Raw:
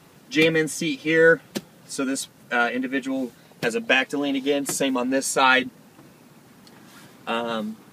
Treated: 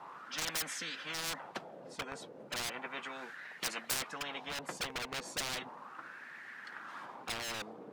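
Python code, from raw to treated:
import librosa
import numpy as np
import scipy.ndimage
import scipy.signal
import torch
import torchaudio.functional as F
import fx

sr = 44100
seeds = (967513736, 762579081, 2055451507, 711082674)

y = fx.wah_lfo(x, sr, hz=0.35, low_hz=460.0, high_hz=1800.0, q=20.0)
y = np.clip(y, -10.0 ** (-38.5 / 20.0), 10.0 ** (-38.5 / 20.0))
y = fx.dynamic_eq(y, sr, hz=830.0, q=0.75, threshold_db=-55.0, ratio=4.0, max_db=5)
y = fx.spectral_comp(y, sr, ratio=10.0)
y = F.gain(torch.from_numpy(y), 15.0).numpy()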